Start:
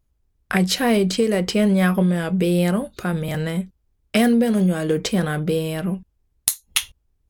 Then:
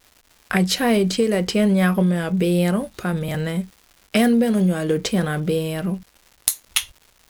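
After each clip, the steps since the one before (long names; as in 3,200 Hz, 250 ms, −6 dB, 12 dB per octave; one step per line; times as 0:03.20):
surface crackle 400 per second −39 dBFS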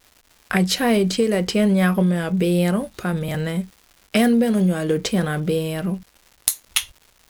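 no processing that can be heard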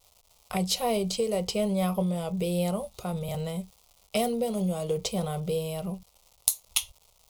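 phaser with its sweep stopped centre 690 Hz, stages 4
level −4 dB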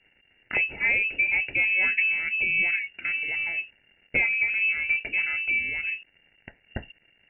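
voice inversion scrambler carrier 2,800 Hz
high-frequency loss of the air 140 metres
level +5 dB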